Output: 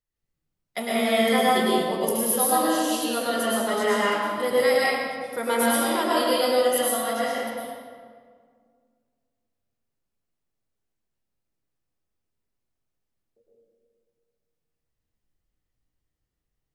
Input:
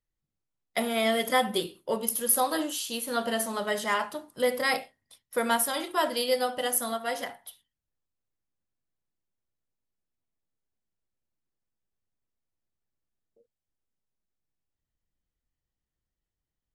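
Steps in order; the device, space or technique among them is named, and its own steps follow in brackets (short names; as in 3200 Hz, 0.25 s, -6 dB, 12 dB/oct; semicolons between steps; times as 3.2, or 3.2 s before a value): stairwell (reverb RT60 2.0 s, pre-delay 0.1 s, DRR -7 dB); gain -2.5 dB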